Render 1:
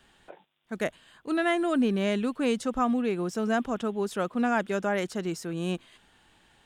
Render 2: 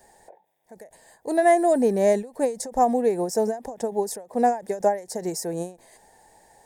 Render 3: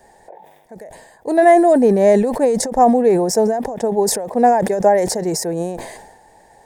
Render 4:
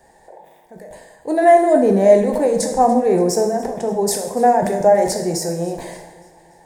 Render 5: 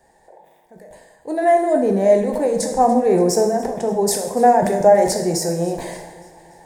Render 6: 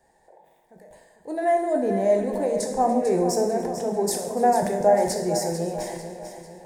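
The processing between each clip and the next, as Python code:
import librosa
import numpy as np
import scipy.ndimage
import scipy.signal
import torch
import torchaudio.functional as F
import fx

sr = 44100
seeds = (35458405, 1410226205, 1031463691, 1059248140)

y1 = fx.curve_eq(x, sr, hz=(310.0, 470.0, 880.0, 1300.0, 1800.0, 3000.0, 4900.0, 9900.0), db=(0, 12, 13, -15, 5, -15, 7, 14))
y1 = fx.end_taper(y1, sr, db_per_s=170.0)
y2 = fx.high_shelf(y1, sr, hz=4700.0, db=-9.5)
y2 = fx.sustainer(y2, sr, db_per_s=50.0)
y2 = F.gain(torch.from_numpy(y2), 7.0).numpy()
y3 = fx.echo_feedback(y2, sr, ms=288, feedback_pct=48, wet_db=-20.0)
y3 = fx.rev_plate(y3, sr, seeds[0], rt60_s=0.77, hf_ratio=0.95, predelay_ms=0, drr_db=3.0)
y3 = F.gain(torch.from_numpy(y3), -3.0).numpy()
y4 = fx.rider(y3, sr, range_db=4, speed_s=2.0)
y4 = F.gain(torch.from_numpy(y4), -1.0).numpy()
y5 = fx.echo_feedback(y4, sr, ms=446, feedback_pct=45, wet_db=-10)
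y5 = F.gain(torch.from_numpy(y5), -6.5).numpy()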